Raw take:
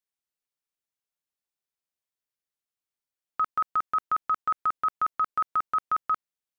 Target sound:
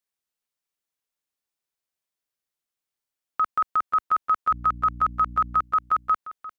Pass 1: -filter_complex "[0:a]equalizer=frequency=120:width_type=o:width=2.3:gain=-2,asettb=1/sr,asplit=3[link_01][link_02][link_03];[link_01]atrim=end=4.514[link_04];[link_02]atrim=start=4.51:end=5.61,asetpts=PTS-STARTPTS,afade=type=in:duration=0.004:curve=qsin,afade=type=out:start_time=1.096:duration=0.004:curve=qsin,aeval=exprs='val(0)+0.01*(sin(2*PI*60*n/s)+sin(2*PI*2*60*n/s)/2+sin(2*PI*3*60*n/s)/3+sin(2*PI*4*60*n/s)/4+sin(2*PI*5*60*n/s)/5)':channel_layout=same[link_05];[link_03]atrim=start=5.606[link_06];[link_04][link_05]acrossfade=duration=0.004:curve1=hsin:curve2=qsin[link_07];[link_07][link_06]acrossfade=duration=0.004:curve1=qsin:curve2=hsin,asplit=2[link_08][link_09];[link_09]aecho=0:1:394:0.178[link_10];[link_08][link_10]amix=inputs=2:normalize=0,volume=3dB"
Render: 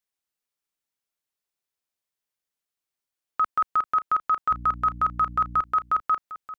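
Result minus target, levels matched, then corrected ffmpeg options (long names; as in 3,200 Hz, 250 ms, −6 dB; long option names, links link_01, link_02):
echo 135 ms early
-filter_complex "[0:a]equalizer=frequency=120:width_type=o:width=2.3:gain=-2,asettb=1/sr,asplit=3[link_01][link_02][link_03];[link_01]atrim=end=4.514[link_04];[link_02]atrim=start=4.51:end=5.61,asetpts=PTS-STARTPTS,afade=type=in:duration=0.004:curve=qsin,afade=type=out:start_time=1.096:duration=0.004:curve=qsin,aeval=exprs='val(0)+0.01*(sin(2*PI*60*n/s)+sin(2*PI*2*60*n/s)/2+sin(2*PI*3*60*n/s)/3+sin(2*PI*4*60*n/s)/4+sin(2*PI*5*60*n/s)/5)':channel_layout=same[link_05];[link_03]atrim=start=5.606[link_06];[link_04][link_05]acrossfade=duration=0.004:curve1=hsin:curve2=qsin[link_07];[link_07][link_06]acrossfade=duration=0.004:curve1=qsin:curve2=hsin,asplit=2[link_08][link_09];[link_09]aecho=0:1:529:0.178[link_10];[link_08][link_10]amix=inputs=2:normalize=0,volume=3dB"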